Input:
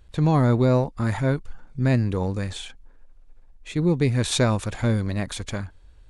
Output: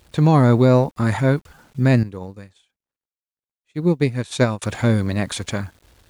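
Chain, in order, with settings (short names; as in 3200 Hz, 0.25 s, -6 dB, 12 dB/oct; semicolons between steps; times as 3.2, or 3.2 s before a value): HPF 92 Hz 12 dB/oct; requantised 10-bit, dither none; 2.03–4.62 upward expander 2.5:1, over -40 dBFS; gain +5.5 dB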